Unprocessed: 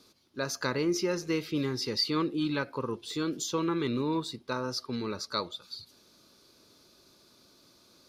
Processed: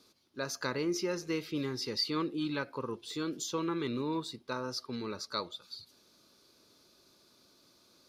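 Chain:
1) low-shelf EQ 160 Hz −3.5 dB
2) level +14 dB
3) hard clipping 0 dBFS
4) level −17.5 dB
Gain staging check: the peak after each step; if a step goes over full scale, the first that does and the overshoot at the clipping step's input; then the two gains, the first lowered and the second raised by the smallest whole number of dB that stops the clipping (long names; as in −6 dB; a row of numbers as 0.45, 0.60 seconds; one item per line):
−15.5, −1.5, −1.5, −19.0 dBFS
no step passes full scale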